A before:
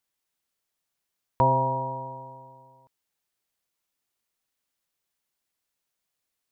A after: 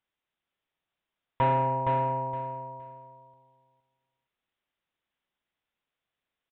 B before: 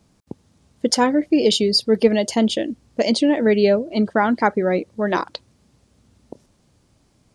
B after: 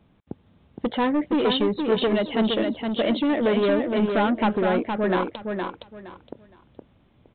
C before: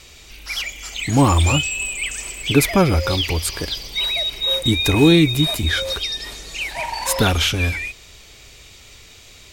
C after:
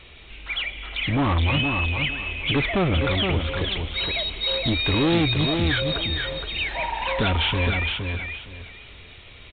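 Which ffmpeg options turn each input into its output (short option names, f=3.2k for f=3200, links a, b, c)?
-af "aresample=8000,asoftclip=type=tanh:threshold=-18dB,aresample=44100,aecho=1:1:466|932|1398:0.562|0.129|0.0297"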